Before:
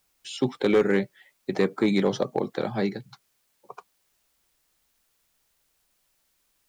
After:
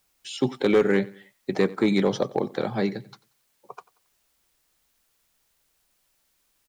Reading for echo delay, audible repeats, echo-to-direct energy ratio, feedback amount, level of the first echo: 91 ms, 2, -20.5 dB, 38%, -21.0 dB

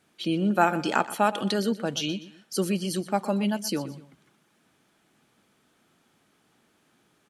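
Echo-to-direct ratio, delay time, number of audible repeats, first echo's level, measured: -15.5 dB, 0.123 s, 2, -16.0 dB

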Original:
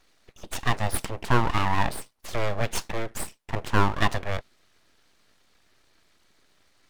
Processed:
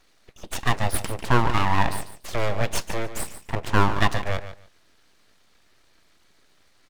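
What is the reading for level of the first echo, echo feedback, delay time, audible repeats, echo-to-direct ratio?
-12.0 dB, 17%, 0.145 s, 2, -12.0 dB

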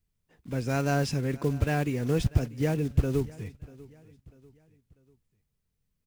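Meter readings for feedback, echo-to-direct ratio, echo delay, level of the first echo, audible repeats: 41%, -20.0 dB, 0.643 s, -21.0 dB, 2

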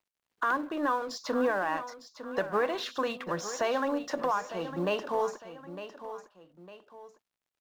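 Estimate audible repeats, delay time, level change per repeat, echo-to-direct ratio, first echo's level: 2, 0.905 s, -8.0 dB, -11.5 dB, -12.0 dB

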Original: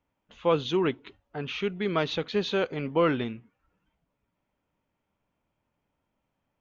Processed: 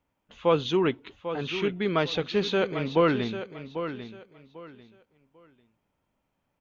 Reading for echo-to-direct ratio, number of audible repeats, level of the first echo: -10.0 dB, 2, -10.5 dB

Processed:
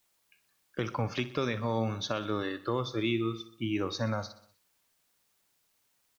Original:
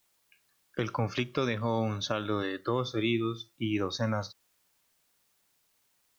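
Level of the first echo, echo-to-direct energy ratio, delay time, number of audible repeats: -16.0 dB, -14.5 dB, 62 ms, 4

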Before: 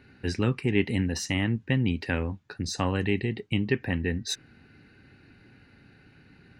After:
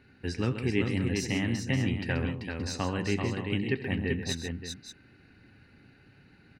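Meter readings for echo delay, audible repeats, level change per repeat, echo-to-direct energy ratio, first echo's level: 82 ms, 4, no steady repeat, -3.0 dB, -17.0 dB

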